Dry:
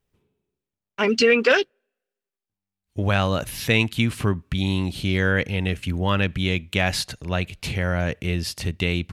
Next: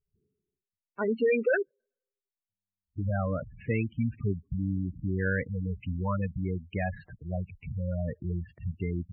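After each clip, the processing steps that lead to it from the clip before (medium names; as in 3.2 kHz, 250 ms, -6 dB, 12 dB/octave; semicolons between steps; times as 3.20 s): low-pass 2.4 kHz 24 dB/octave; spectral gate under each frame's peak -10 dB strong; trim -6.5 dB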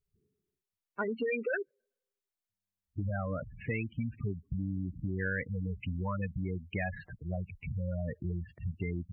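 compression 6:1, threshold -31 dBFS, peak gain reduction 9.5 dB; dynamic bell 2.1 kHz, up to +7 dB, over -57 dBFS, Q 1.5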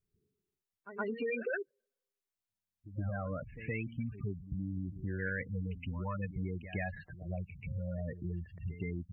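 reverse echo 119 ms -12.5 dB; trim -3 dB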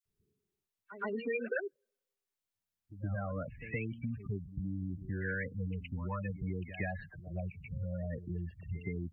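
phase dispersion lows, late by 56 ms, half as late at 1.5 kHz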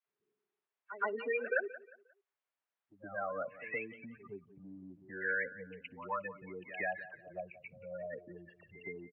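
band-pass 590–2000 Hz; feedback delay 178 ms, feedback 32%, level -17 dB; trim +6 dB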